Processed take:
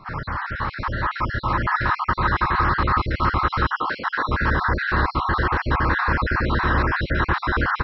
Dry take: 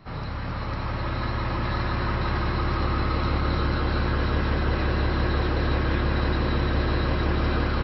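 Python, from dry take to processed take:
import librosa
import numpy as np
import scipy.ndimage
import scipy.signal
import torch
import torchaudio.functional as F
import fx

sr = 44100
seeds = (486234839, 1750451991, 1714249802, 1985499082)

y = fx.spec_dropout(x, sr, seeds[0], share_pct=41)
y = fx.highpass(y, sr, hz=320.0, slope=12, at=(3.72, 4.29))
y = fx.band_shelf(y, sr, hz=1300.0, db=10.0, octaves=1.3)
y = F.gain(torch.from_numpy(y), 2.5).numpy()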